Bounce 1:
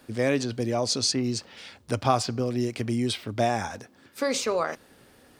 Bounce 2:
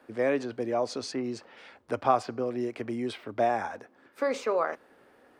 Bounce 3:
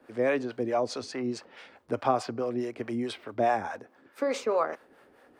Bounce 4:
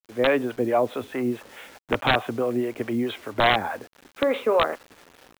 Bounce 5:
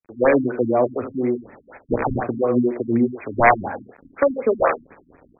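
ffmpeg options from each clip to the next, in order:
-filter_complex "[0:a]acrossover=split=280 2200:gain=0.178 1 0.158[a][b][c];[a][b][c]amix=inputs=3:normalize=0"
-filter_complex "[0:a]acrossover=split=510[a][b];[a]aeval=exprs='val(0)*(1-0.7/2+0.7/2*cos(2*PI*4.7*n/s))':c=same[c];[b]aeval=exprs='val(0)*(1-0.7/2-0.7/2*cos(2*PI*4.7*n/s))':c=same[d];[c][d]amix=inputs=2:normalize=0,volume=4dB"
-af "dynaudnorm=f=130:g=3:m=6dB,aresample=8000,aeval=exprs='(mod(3.55*val(0)+1,2)-1)/3.55':c=same,aresample=44100,acrusher=bits=7:mix=0:aa=0.000001"
-filter_complex "[0:a]acrossover=split=410[a][b];[a]aeval=exprs='val(0)*(1-0.7/2+0.7/2*cos(2*PI*2.7*n/s))':c=same[c];[b]aeval=exprs='val(0)*(1-0.7/2-0.7/2*cos(2*PI*2.7*n/s))':c=same[d];[c][d]amix=inputs=2:normalize=0,aecho=1:1:49|79:0.266|0.376,afftfilt=real='re*lt(b*sr/1024,280*pow(2600/280,0.5+0.5*sin(2*PI*4.1*pts/sr)))':imag='im*lt(b*sr/1024,280*pow(2600/280,0.5+0.5*sin(2*PI*4.1*pts/sr)))':win_size=1024:overlap=0.75,volume=8.5dB"

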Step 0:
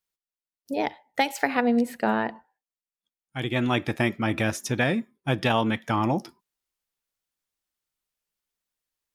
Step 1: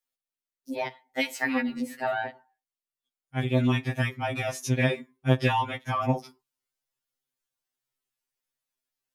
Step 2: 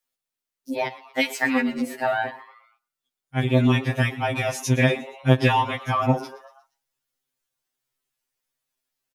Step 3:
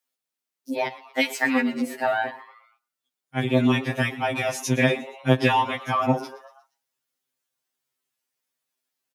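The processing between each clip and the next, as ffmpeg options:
-af "afftfilt=real='re*2.45*eq(mod(b,6),0)':imag='im*2.45*eq(mod(b,6),0)':win_size=2048:overlap=0.75"
-filter_complex "[0:a]asplit=5[a][b][c][d][e];[b]adelay=118,afreqshift=140,volume=-18dB[f];[c]adelay=236,afreqshift=280,volume=-24dB[g];[d]adelay=354,afreqshift=420,volume=-30dB[h];[e]adelay=472,afreqshift=560,volume=-36.1dB[i];[a][f][g][h][i]amix=inputs=5:normalize=0,volume=5dB"
-af "highpass=f=140:w=0.5412,highpass=f=140:w=1.3066"

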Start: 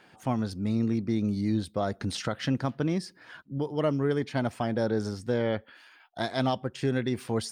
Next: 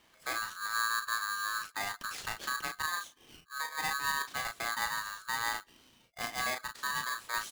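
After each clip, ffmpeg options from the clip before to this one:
-filter_complex "[0:a]asplit=2[a][b];[b]adelay=35,volume=-5.5dB[c];[a][c]amix=inputs=2:normalize=0,aeval=exprs='val(0)*sgn(sin(2*PI*1400*n/s))':c=same,volume=-8.5dB"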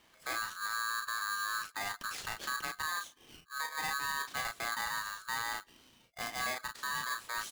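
-af "alimiter=level_in=4.5dB:limit=-24dB:level=0:latency=1:release=10,volume=-4.5dB"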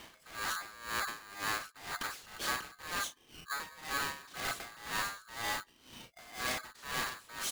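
-filter_complex "[0:a]asplit=2[a][b];[b]aeval=exprs='0.0398*sin(PI/2*5.62*val(0)/0.0398)':c=same,volume=-6dB[c];[a][c]amix=inputs=2:normalize=0,aeval=exprs='val(0)*pow(10,-20*(0.5-0.5*cos(2*PI*2*n/s))/20)':c=same"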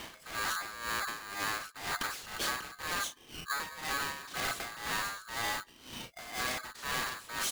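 -af "acompressor=threshold=-40dB:ratio=4,volume=7.5dB"

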